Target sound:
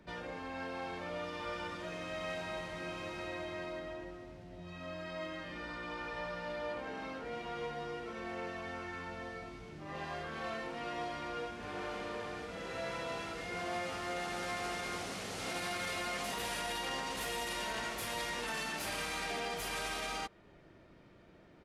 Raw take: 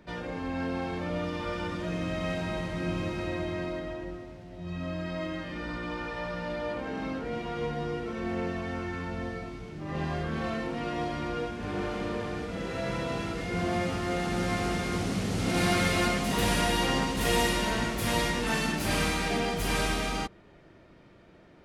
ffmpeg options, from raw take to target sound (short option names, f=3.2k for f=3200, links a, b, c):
-filter_complex "[0:a]acrossover=split=450[a][b];[a]acompressor=threshold=-43dB:ratio=16[c];[b]alimiter=level_in=1.5dB:limit=-24dB:level=0:latency=1:release=19,volume=-1.5dB[d];[c][d]amix=inputs=2:normalize=0,aresample=32000,aresample=44100,volume=-4.5dB"